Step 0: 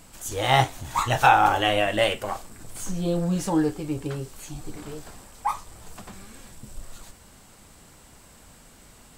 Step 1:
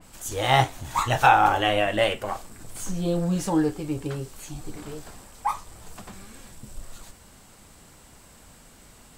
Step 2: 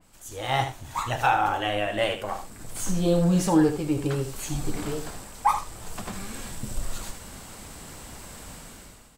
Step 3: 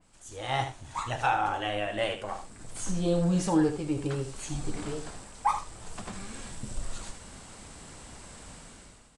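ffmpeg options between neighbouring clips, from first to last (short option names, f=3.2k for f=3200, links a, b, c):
-af "adynamicequalizer=threshold=0.0158:dfrequency=3200:dqfactor=0.7:tfrequency=3200:tqfactor=0.7:attack=5:release=100:ratio=0.375:range=2:mode=cutabove:tftype=highshelf"
-filter_complex "[0:a]dynaudnorm=f=230:g=5:m=17dB,asplit=2[a][b];[b]aecho=0:1:77:0.335[c];[a][c]amix=inputs=2:normalize=0,volume=-8.5dB"
-af "aresample=22050,aresample=44100,volume=-4.5dB"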